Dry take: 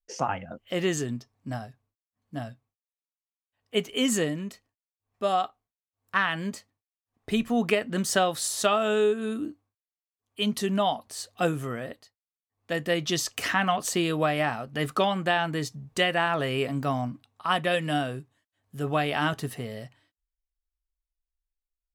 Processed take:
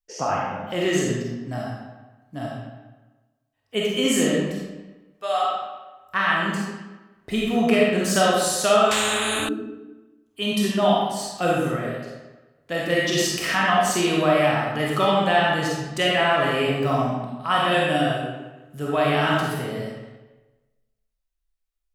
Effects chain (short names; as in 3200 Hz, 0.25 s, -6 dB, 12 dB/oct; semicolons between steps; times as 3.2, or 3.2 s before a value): 4.47–5.44 HPF 760 Hz 12 dB/oct; digital reverb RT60 1.2 s, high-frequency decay 0.75×, pre-delay 5 ms, DRR -4.5 dB; 8.91–9.49 spectral compressor 4:1